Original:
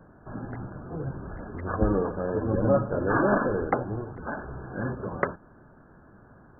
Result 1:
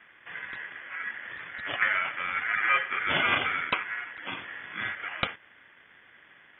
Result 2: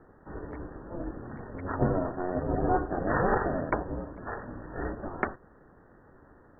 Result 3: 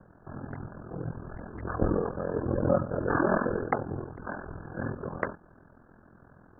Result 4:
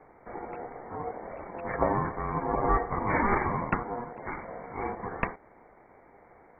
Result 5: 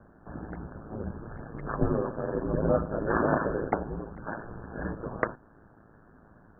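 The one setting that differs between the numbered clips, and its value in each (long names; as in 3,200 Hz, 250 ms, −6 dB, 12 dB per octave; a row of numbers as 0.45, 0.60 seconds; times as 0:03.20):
ring modulation, frequency: 1,800, 180, 21, 600, 55 Hertz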